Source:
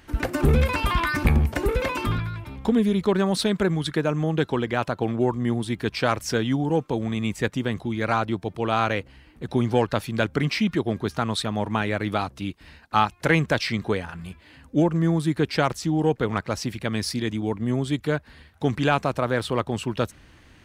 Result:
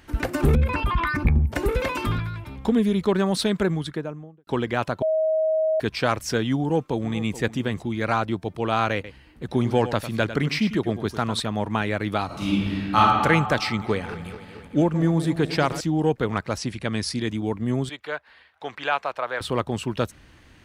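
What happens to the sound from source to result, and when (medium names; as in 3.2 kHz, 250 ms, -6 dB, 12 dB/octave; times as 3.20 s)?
0.55–1.52 s: resonances exaggerated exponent 1.5
3.56–4.47 s: studio fade out
5.02–5.80 s: bleep 633 Hz -18.5 dBFS
6.60–7.39 s: echo throw 430 ms, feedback 15%, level -15 dB
8.94–11.40 s: delay 100 ms -12 dB
12.26–12.97 s: reverb throw, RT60 2.1 s, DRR -10 dB
13.68–15.81 s: backward echo that repeats 112 ms, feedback 82%, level -14 dB
16.58–17.21 s: steep low-pass 11 kHz 72 dB/octave
17.89–19.41 s: three-band isolator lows -24 dB, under 530 Hz, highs -14 dB, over 4.3 kHz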